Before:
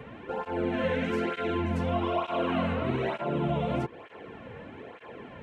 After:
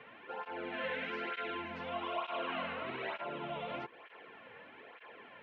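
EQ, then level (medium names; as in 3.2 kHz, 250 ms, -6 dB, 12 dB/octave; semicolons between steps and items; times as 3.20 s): band-pass filter 5.4 kHz, Q 0.85; distance through air 310 m; treble shelf 5 kHz -12 dB; +9.0 dB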